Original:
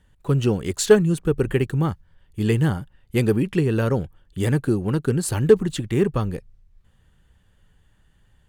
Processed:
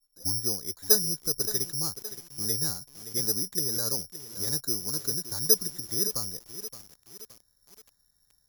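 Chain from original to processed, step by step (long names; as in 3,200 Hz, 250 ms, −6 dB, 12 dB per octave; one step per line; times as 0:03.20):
turntable start at the beginning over 0.43 s
Savitzky-Golay smoothing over 41 samples
low-shelf EQ 380 Hz −7 dB
bad sample-rate conversion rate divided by 8×, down filtered, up zero stuff
feedback echo at a low word length 570 ms, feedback 55%, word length 3 bits, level −12 dB
level −13.5 dB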